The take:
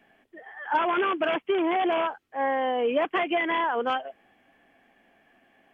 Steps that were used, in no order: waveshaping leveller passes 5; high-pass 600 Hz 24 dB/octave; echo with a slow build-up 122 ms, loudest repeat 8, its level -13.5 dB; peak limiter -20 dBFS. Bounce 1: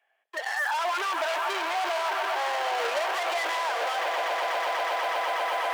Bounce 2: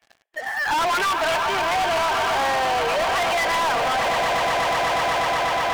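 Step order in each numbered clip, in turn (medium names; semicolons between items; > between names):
echo with a slow build-up > waveshaping leveller > high-pass > peak limiter; echo with a slow build-up > peak limiter > high-pass > waveshaping leveller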